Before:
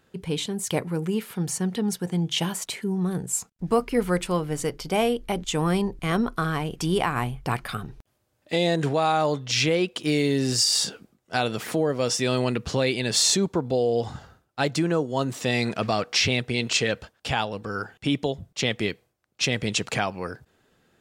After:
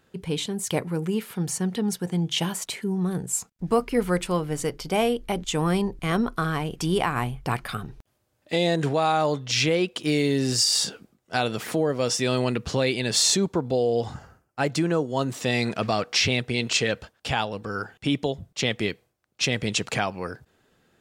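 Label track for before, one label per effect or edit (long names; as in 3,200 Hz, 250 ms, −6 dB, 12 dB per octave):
14.140000	14.700000	parametric band 3,700 Hz −14 dB 0.36 octaves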